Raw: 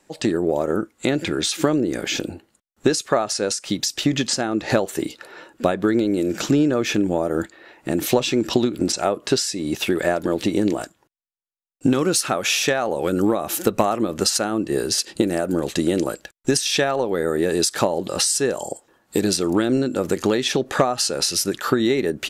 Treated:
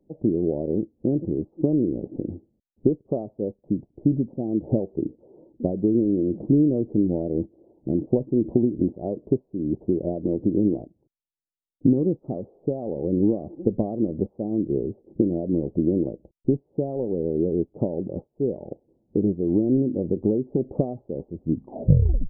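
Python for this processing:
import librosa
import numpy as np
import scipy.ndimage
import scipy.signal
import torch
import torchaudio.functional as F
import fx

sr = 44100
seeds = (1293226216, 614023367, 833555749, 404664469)

y = fx.tape_stop_end(x, sr, length_s=0.97)
y = scipy.ndimage.gaussian_filter1d(y, 19.0, mode='constant')
y = y * 10.0 ** (2.0 / 20.0)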